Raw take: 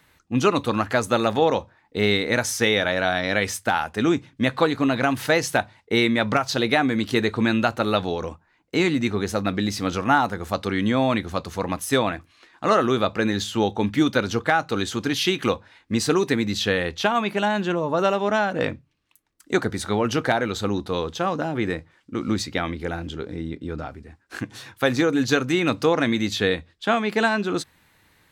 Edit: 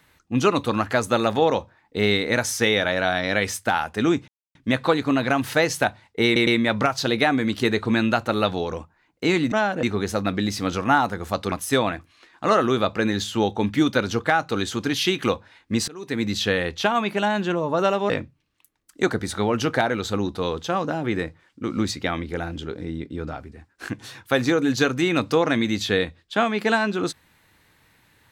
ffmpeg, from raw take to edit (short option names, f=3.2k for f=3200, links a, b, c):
-filter_complex "[0:a]asplit=9[a][b][c][d][e][f][g][h][i];[a]atrim=end=4.28,asetpts=PTS-STARTPTS,afade=t=out:st=4.276:d=0.004:c=hsin,apad=pad_dur=0.27[j];[b]atrim=start=4.28:end=6.092,asetpts=PTS-STARTPTS,afade=t=in:d=0.004:c=hsin[k];[c]atrim=start=5.978:end=6.092[l];[d]atrim=start=5.978:end=9.032[m];[e]atrim=start=18.298:end=18.612[n];[f]atrim=start=9.028:end=10.722[o];[g]atrim=start=11.718:end=16.08,asetpts=PTS-STARTPTS,afade=t=out:st=4.358:d=0.004:c=hsin:silence=0.0668344[p];[h]atrim=start=16.08:end=18.302,asetpts=PTS-STARTPTS,afade=t=in:d=0.35:c=qua:silence=0.0668344[q];[i]atrim=start=18.608[r];[j][k]concat=n=2:v=0:a=1[s];[s][l]acrossfade=d=0.004:c1=hsin:c2=hsin[t];[t][m]acrossfade=d=0.004:c1=hsin:c2=hsin[u];[u][n]acrossfade=d=0.004:c1=hsin:c2=hsin[v];[v][o]acrossfade=d=0.004:c1=hsin:c2=hsin[w];[p][q]concat=n=2:v=0:a=1[x];[w][x]acrossfade=d=0.004:c1=hsin:c2=hsin[y];[y][r]acrossfade=d=0.004:c1=hsin:c2=hsin"